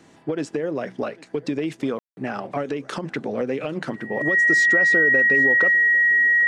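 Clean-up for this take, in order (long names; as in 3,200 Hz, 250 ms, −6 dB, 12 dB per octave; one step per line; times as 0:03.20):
notch filter 1,900 Hz, Q 30
ambience match 0:01.99–0:02.17
echo removal 800 ms −23.5 dB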